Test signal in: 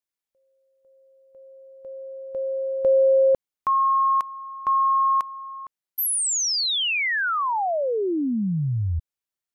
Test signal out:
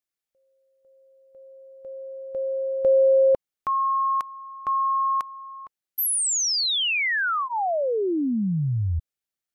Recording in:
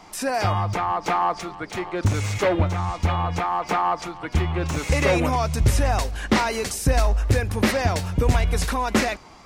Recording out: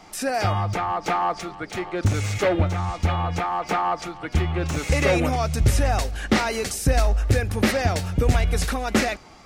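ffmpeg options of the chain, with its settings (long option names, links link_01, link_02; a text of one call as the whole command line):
ffmpeg -i in.wav -af "bandreject=frequency=1000:width=6.3" out.wav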